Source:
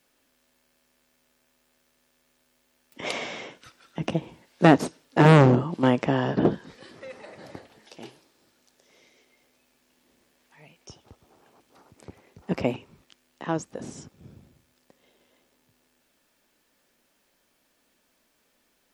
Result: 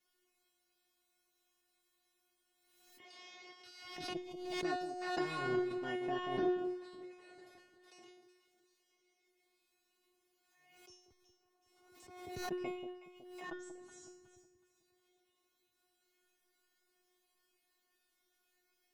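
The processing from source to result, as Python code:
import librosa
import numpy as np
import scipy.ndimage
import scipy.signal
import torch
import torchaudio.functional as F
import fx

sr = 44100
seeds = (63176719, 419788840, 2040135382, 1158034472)

y = fx.peak_eq(x, sr, hz=4700.0, db=11.5, octaves=0.46, at=(3.03, 5.39))
y = fx.level_steps(y, sr, step_db=24)
y = fx.comb_fb(y, sr, f0_hz=360.0, decay_s=0.58, harmonics='all', damping=0.0, mix_pct=100)
y = fx.echo_alternate(y, sr, ms=185, hz=850.0, feedback_pct=57, wet_db=-8)
y = fx.pre_swell(y, sr, db_per_s=45.0)
y = y * librosa.db_to_amplitude(10.0)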